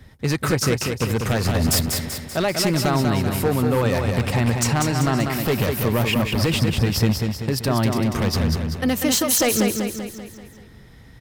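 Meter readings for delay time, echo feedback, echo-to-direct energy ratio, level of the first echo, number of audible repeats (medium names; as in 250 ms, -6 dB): 193 ms, 51%, -3.5 dB, -5.0 dB, 6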